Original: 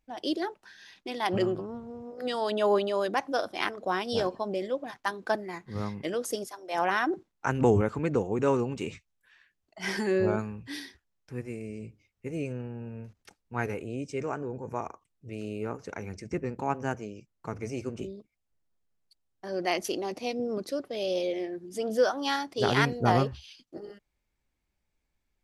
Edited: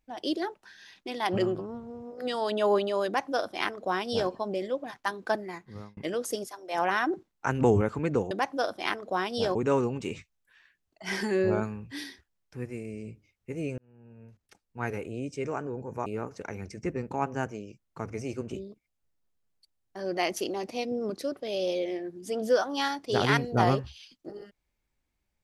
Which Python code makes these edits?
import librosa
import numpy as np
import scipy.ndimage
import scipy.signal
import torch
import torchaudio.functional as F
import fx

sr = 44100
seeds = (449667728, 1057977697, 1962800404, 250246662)

y = fx.edit(x, sr, fx.duplicate(start_s=3.06, length_s=1.24, to_s=8.31),
    fx.fade_out_span(start_s=5.47, length_s=0.5),
    fx.fade_in_span(start_s=12.54, length_s=1.3),
    fx.cut(start_s=14.82, length_s=0.72), tone=tone)